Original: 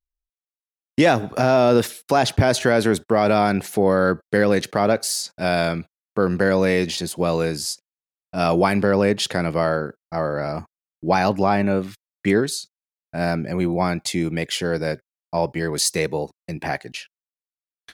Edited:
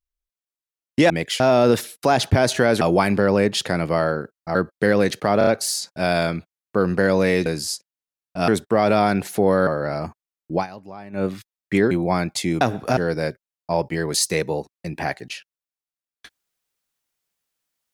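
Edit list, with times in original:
1.10–1.46 s: swap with 14.31–14.61 s
2.87–4.06 s: swap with 8.46–10.20 s
4.89 s: stutter 0.03 s, 4 plays
6.88–7.44 s: delete
11.07–11.78 s: dip -19.5 dB, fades 0.13 s
12.44–13.61 s: delete

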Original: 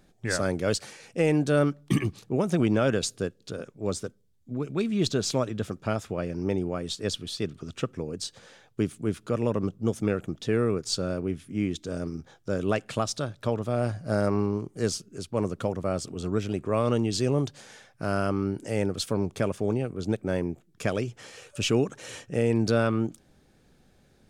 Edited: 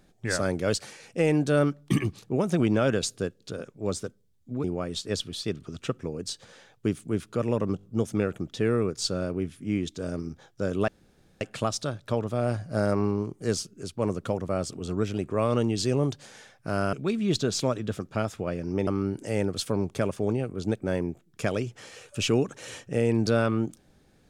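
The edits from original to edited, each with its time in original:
4.64–6.58 s: move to 18.28 s
9.71 s: stutter 0.02 s, 4 plays
12.76 s: insert room tone 0.53 s

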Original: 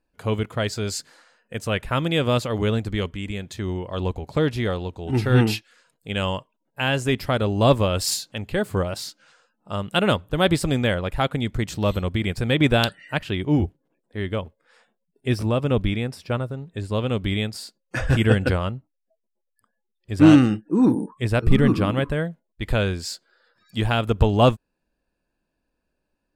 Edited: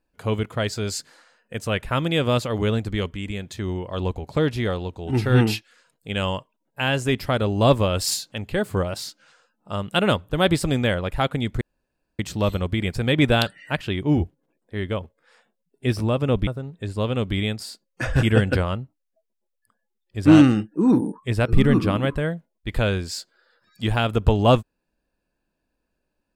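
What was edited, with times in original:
11.61 s: insert room tone 0.58 s
15.89–16.41 s: delete

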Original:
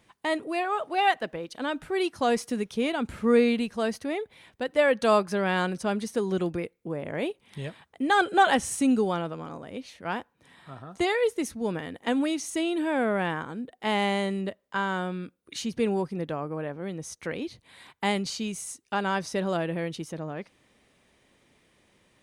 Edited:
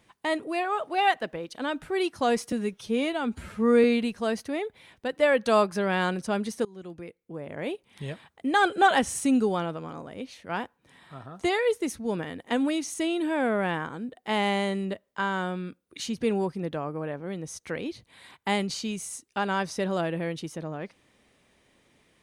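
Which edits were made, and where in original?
2.52–3.40 s: stretch 1.5×
6.21–7.58 s: fade in, from -23 dB

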